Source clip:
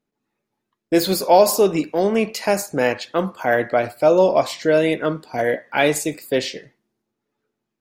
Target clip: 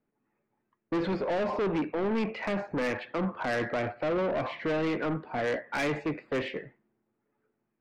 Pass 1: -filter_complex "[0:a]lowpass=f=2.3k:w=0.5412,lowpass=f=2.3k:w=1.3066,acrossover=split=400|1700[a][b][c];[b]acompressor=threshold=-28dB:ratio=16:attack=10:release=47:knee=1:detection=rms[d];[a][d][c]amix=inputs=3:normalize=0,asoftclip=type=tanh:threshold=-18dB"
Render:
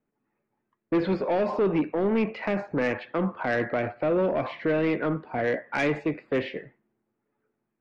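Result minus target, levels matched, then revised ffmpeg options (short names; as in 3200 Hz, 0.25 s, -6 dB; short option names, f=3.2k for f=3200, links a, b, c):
soft clip: distortion -7 dB
-filter_complex "[0:a]lowpass=f=2.3k:w=0.5412,lowpass=f=2.3k:w=1.3066,acrossover=split=400|1700[a][b][c];[b]acompressor=threshold=-28dB:ratio=16:attack=10:release=47:knee=1:detection=rms[d];[a][d][c]amix=inputs=3:normalize=0,asoftclip=type=tanh:threshold=-25.5dB"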